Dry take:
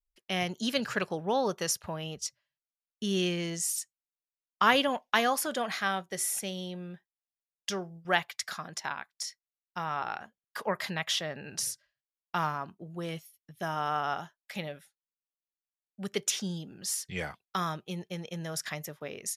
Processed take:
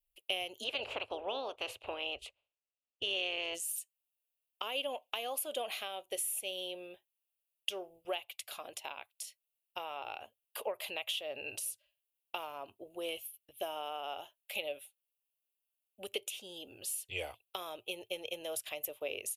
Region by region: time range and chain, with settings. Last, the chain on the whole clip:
0.63–3.54 spectral limiter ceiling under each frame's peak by 22 dB + Bessel low-pass 2100 Hz
whole clip: high shelf 3400 Hz +8 dB; compressor 10:1, threshold -33 dBFS; EQ curve 110 Hz 0 dB, 160 Hz -27 dB, 270 Hz -5 dB, 570 Hz +7 dB, 1800 Hz -13 dB, 2700 Hz +10 dB, 5400 Hz -13 dB, 11000 Hz +5 dB; gain -2.5 dB

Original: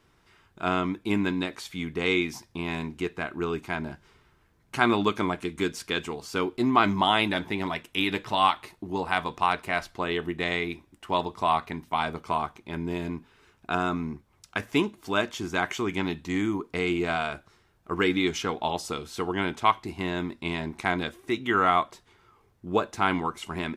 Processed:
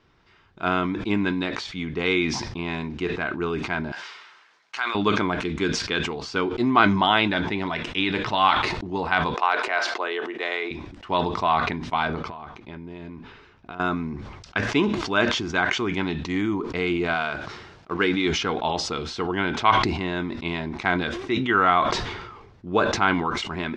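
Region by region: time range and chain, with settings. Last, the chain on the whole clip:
3.92–4.95 HPF 990 Hz + high shelf 4600 Hz +6.5 dB + compressor 2.5:1, threshold -29 dBFS
9.34–10.71 HPF 380 Hz 24 dB/oct + bell 3600 Hz -3 dB 1.5 oct
12.07–13.8 high shelf 6500 Hz -9 dB + compressor 16:1, threshold -35 dBFS
17.14–18.26 G.711 law mismatch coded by A + HPF 110 Hz 6 dB/oct
whole clip: LPF 5400 Hz 24 dB/oct; dynamic EQ 1500 Hz, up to +5 dB, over -44 dBFS, Q 6.5; sustainer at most 45 dB/s; gain +2 dB

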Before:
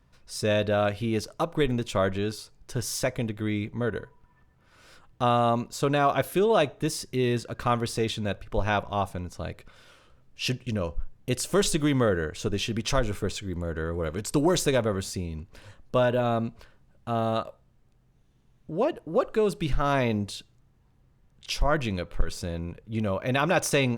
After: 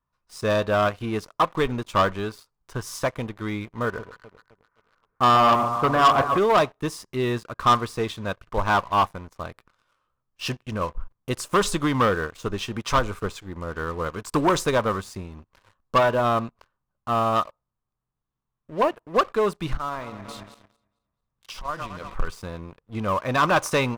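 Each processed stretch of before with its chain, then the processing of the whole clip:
3.85–6.38 steep low-pass 2200 Hz + echo with dull and thin repeats by turns 0.13 s, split 940 Hz, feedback 74%, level -7 dB
19.77–22.14 regenerating reverse delay 0.111 s, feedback 60%, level -10 dB + compressor 12:1, threshold -29 dBFS
whole clip: bell 1100 Hz +14.5 dB 0.81 oct; sample leveller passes 3; upward expander 1.5:1, over -23 dBFS; gain -7.5 dB

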